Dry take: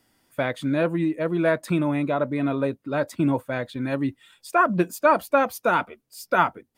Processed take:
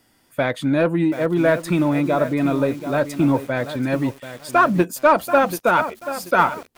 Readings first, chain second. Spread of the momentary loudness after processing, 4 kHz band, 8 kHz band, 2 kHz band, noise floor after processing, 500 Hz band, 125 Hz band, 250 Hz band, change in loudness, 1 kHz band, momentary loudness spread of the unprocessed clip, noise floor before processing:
7 LU, +5.0 dB, +6.0 dB, +4.0 dB, -60 dBFS, +4.5 dB, +4.5 dB, +4.5 dB, +4.0 dB, +4.0 dB, 8 LU, -70 dBFS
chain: in parallel at -5 dB: soft clip -19.5 dBFS, distortion -10 dB; on the sum: lo-fi delay 0.734 s, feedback 35%, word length 6-bit, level -11 dB; gain +1.5 dB

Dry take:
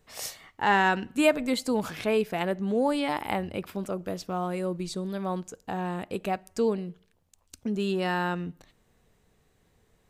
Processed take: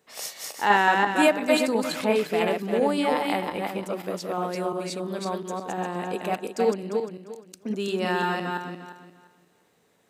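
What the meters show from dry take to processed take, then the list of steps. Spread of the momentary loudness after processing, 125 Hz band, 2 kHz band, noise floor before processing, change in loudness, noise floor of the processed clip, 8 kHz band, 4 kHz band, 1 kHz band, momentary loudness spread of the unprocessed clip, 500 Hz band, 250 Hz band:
13 LU, -1.0 dB, +4.0 dB, -68 dBFS, +3.0 dB, -65 dBFS, +4.0 dB, +4.0 dB, +4.5 dB, 11 LU, +4.0 dB, +1.5 dB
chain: regenerating reverse delay 0.175 s, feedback 47%, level -2 dB; HPF 230 Hz 12 dB/oct; gain +1.5 dB

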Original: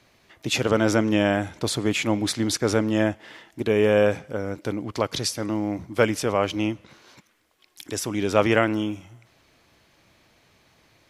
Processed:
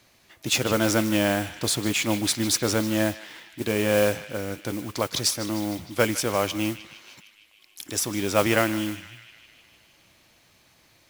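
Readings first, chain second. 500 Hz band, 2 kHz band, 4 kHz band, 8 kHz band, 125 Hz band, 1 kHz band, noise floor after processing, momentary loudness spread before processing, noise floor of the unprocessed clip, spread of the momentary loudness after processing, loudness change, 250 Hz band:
-3.0 dB, 0.0 dB, +2.5 dB, +5.0 dB, -2.0 dB, -1.5 dB, -60 dBFS, 11 LU, -61 dBFS, 11 LU, -1.0 dB, -2.0 dB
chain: high shelf 4700 Hz +9 dB; notch 430 Hz, Q 12; modulation noise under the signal 14 dB; on a send: narrowing echo 0.153 s, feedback 73%, band-pass 2800 Hz, level -12 dB; on the sum: gain -2 dB

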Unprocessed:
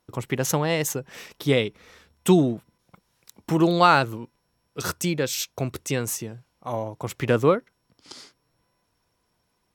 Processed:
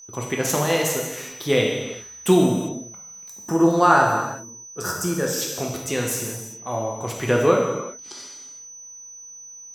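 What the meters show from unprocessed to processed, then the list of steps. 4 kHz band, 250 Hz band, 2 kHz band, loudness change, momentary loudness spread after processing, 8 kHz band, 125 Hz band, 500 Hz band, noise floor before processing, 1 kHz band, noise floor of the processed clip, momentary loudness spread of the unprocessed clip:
+1.0 dB, +2.0 dB, +3.0 dB, +1.5 dB, 21 LU, +5.5 dB, -0.5 dB, +3.0 dB, -73 dBFS, +3.0 dB, -42 dBFS, 15 LU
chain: spectral gain 3.29–5.42, 1900–4700 Hz -12 dB; low shelf 150 Hz -5.5 dB; whine 6000 Hz -43 dBFS; non-linear reverb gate 0.42 s falling, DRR -1 dB

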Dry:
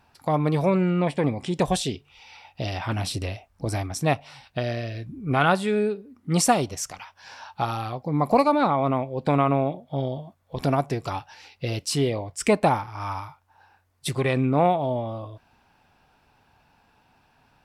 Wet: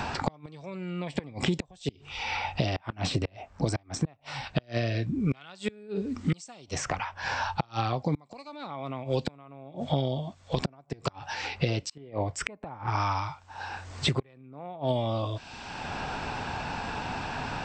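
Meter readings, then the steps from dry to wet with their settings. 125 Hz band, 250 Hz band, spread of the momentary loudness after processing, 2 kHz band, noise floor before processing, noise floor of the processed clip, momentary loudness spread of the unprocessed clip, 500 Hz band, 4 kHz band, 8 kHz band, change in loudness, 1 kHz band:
-4.0 dB, -7.0 dB, 10 LU, -2.5 dB, -63 dBFS, -57 dBFS, 14 LU, -9.0 dB, -1.0 dB, -9.0 dB, -7.5 dB, -7.5 dB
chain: in parallel at -3 dB: compressor 6:1, threshold -30 dBFS, peak gain reduction 15.5 dB; on the sum: brick-wall FIR low-pass 8400 Hz; flipped gate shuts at -14 dBFS, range -33 dB; three-band squash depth 100%

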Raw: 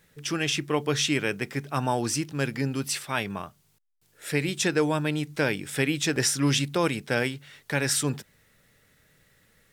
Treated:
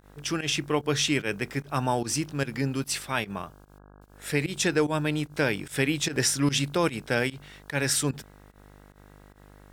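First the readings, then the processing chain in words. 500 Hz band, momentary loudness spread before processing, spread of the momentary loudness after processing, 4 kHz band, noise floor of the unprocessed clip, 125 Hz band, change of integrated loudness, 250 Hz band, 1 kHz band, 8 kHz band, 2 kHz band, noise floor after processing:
-0.5 dB, 8 LU, 8 LU, -0.5 dB, -65 dBFS, -0.5 dB, -0.5 dB, -0.5 dB, 0.0 dB, 0.0 dB, -0.5 dB, -53 dBFS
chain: buzz 50 Hz, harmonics 33, -52 dBFS -4 dB/oct; pump 148 bpm, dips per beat 1, -18 dB, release 0.104 s

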